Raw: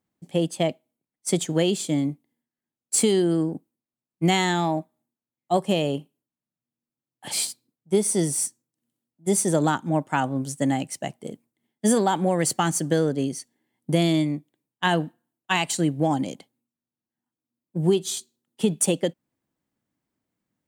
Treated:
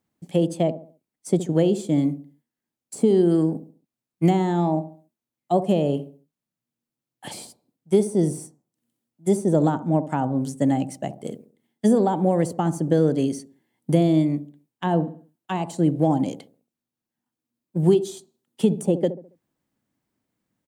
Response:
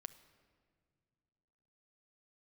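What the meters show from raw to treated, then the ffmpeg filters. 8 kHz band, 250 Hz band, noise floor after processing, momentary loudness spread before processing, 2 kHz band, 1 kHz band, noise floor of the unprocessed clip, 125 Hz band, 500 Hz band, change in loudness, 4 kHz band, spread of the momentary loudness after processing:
-12.5 dB, +3.0 dB, under -85 dBFS, 12 LU, -10.5 dB, -1.0 dB, under -85 dBFS, +3.5 dB, +2.5 dB, +2.0 dB, -10.5 dB, 16 LU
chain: -filter_complex "[0:a]acrossover=split=850[a][b];[a]aecho=1:1:69|138|207|276:0.251|0.0904|0.0326|0.0117[c];[b]acompressor=threshold=-41dB:ratio=10[d];[c][d]amix=inputs=2:normalize=0,volume=3dB"

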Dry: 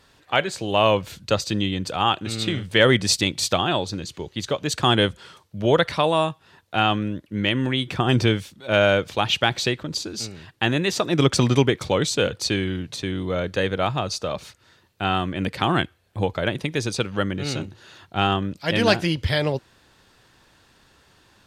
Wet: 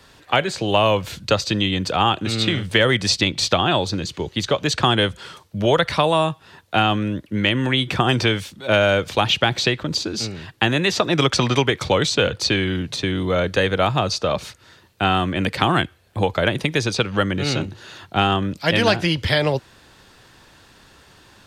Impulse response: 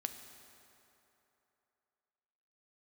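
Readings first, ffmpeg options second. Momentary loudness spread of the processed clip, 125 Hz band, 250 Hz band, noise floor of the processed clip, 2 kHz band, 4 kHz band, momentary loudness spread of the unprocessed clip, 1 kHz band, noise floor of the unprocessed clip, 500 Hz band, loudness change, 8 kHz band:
7 LU, +2.0 dB, +1.5 dB, -51 dBFS, +3.5 dB, +3.5 dB, 10 LU, +3.0 dB, -58 dBFS, +2.0 dB, +2.5 dB, +0.5 dB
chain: -filter_complex "[0:a]acrossover=split=140|530|5700[a][b][c][d];[a]acompressor=threshold=-34dB:ratio=4[e];[b]acompressor=threshold=-30dB:ratio=4[f];[c]acompressor=threshold=-23dB:ratio=4[g];[d]acompressor=threshold=-47dB:ratio=4[h];[e][f][g][h]amix=inputs=4:normalize=0,volume=7dB"

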